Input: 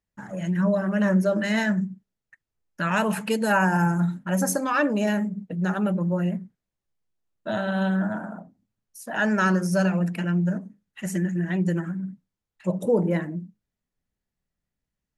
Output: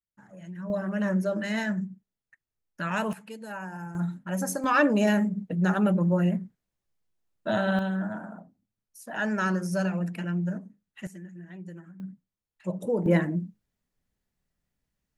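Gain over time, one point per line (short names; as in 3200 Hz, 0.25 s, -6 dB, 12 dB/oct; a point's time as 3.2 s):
-15 dB
from 0.7 s -5.5 dB
from 3.13 s -17 dB
from 3.95 s -6 dB
from 4.64 s +1 dB
from 7.79 s -5.5 dB
from 11.07 s -18 dB
from 12 s -6 dB
from 13.06 s +3 dB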